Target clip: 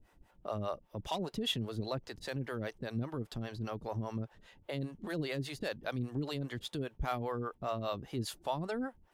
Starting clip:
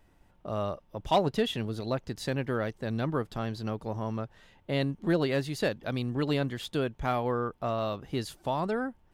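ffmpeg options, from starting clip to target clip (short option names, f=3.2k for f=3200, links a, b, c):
-filter_complex "[0:a]acrossover=split=4400[a][b];[a]alimiter=level_in=1.5dB:limit=-24dB:level=0:latency=1:release=68,volume=-1.5dB[c];[c][b]amix=inputs=2:normalize=0,acrossover=split=410[d][e];[d]aeval=exprs='val(0)*(1-1/2+1/2*cos(2*PI*5*n/s))':c=same[f];[e]aeval=exprs='val(0)*(1-1/2-1/2*cos(2*PI*5*n/s))':c=same[g];[f][g]amix=inputs=2:normalize=0,volume=2.5dB"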